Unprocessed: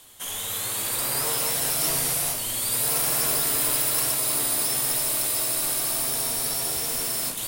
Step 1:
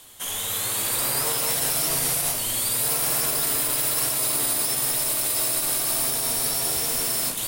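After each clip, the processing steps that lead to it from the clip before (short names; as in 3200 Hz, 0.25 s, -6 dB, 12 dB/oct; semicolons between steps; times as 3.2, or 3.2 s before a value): limiter -16 dBFS, peak gain reduction 5.5 dB; gain +2.5 dB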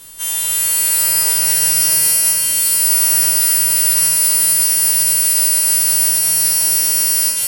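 frequency quantiser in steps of 2 st; added noise pink -51 dBFS; shimmer reverb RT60 3.5 s, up +7 st, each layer -8 dB, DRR 5 dB; gain -1.5 dB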